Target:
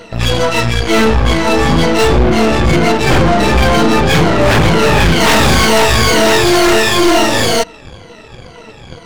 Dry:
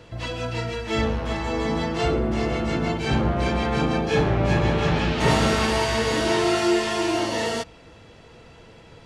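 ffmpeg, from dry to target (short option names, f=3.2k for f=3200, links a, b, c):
-af "afftfilt=real='re*pow(10,19/40*sin(2*PI*(1.9*log(max(b,1)*sr/1024/100)/log(2)-(-2.1)*(pts-256)/sr)))':imag='im*pow(10,19/40*sin(2*PI*(1.9*log(max(b,1)*sr/1024/100)/log(2)-(-2.1)*(pts-256)/sr)))':win_size=1024:overlap=0.75,aeval=exprs='0.708*sin(PI/2*3.55*val(0)/0.708)':c=same,aeval=exprs='0.75*(cos(1*acos(clip(val(0)/0.75,-1,1)))-cos(1*PI/2))+0.119*(cos(4*acos(clip(val(0)/0.75,-1,1)))-cos(4*PI/2))+0.0335*(cos(7*acos(clip(val(0)/0.75,-1,1)))-cos(7*PI/2))+0.0473*(cos(8*acos(clip(val(0)/0.75,-1,1)))-cos(8*PI/2))':c=same,volume=-3dB"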